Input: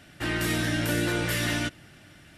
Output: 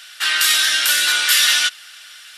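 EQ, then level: resonant high-pass 1.4 kHz, resonance Q 2.8; resonant high shelf 2.6 kHz +10.5 dB, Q 1.5; +6.5 dB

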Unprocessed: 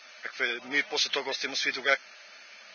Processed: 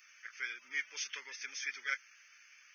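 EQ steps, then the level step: differentiator; bass shelf 75 Hz +7.5 dB; static phaser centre 1.7 kHz, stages 4; +2.0 dB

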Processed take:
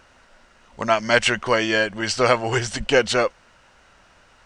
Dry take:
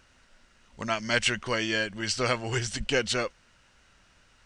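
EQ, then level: peaking EQ 750 Hz +9 dB 2.2 oct; +3.5 dB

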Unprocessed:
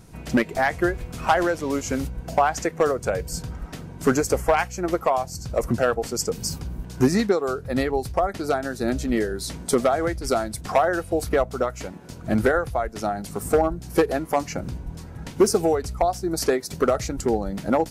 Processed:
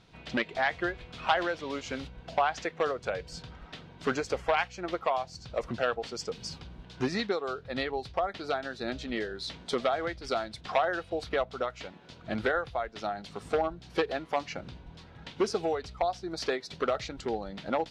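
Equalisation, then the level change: resonant low-pass 3.6 kHz, resonance Q 2.7; bass shelf 160 Hz -10 dB; peaking EQ 290 Hz -3.5 dB 1.4 oct; -6.5 dB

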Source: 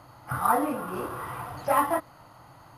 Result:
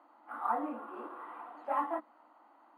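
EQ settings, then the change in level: boxcar filter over 8 samples; rippled Chebyshev high-pass 220 Hz, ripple 6 dB; -7.5 dB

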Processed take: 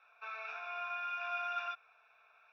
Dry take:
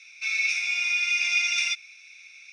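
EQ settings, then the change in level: low-pass 1.4 kHz 24 dB/octave; static phaser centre 880 Hz, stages 4; +14.0 dB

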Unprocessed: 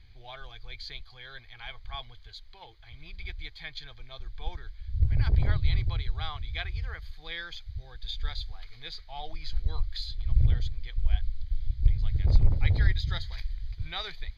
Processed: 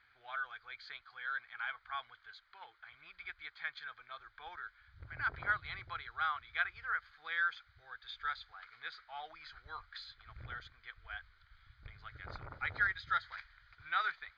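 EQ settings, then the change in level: band-pass filter 1.4 kHz, Q 7; +14.0 dB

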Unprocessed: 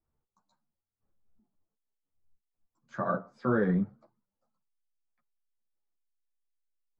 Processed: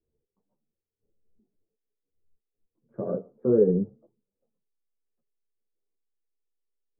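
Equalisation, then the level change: resonant low-pass 440 Hz, resonance Q 4.9; distance through air 470 m; 0.0 dB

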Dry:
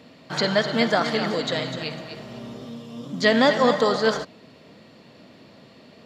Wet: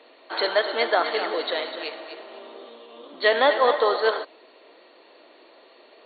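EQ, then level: elliptic high-pass 340 Hz, stop band 80 dB; brick-wall FIR low-pass 4.5 kHz; peaking EQ 910 Hz +2 dB; 0.0 dB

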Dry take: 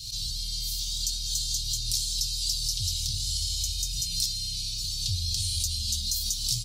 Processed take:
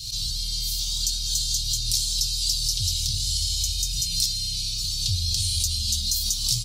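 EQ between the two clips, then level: dynamic bell 840 Hz, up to +7 dB, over -57 dBFS, Q 1; +4.0 dB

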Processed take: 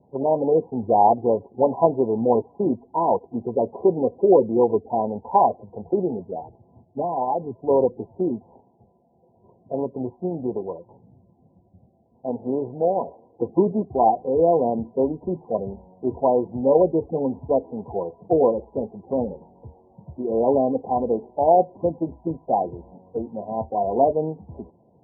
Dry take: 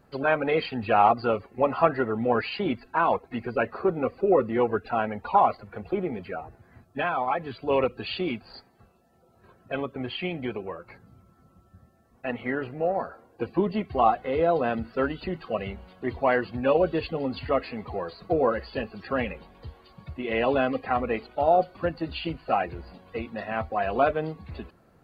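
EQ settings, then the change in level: high-pass 100 Hz; Chebyshev low-pass 1 kHz, order 10; dynamic bell 370 Hz, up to +4 dB, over -36 dBFS, Q 0.97; +3.0 dB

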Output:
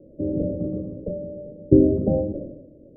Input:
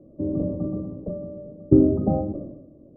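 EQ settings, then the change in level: resonant low-pass 520 Hz, resonance Q 3.4; tilt EQ -2 dB/octave; -6.5 dB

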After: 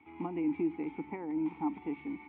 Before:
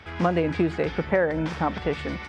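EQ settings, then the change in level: vowel filter u; distance through air 190 m; peaking EQ 4.9 kHz -14.5 dB 0.43 oct; 0.0 dB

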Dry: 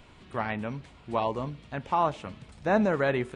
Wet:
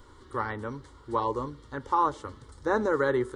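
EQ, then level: static phaser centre 680 Hz, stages 6; band-stop 1.6 kHz, Q 20; +4.0 dB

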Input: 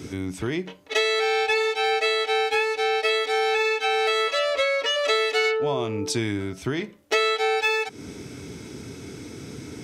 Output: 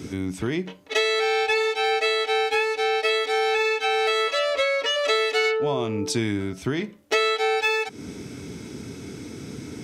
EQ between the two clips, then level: peaking EQ 210 Hz +4 dB 0.77 oct; 0.0 dB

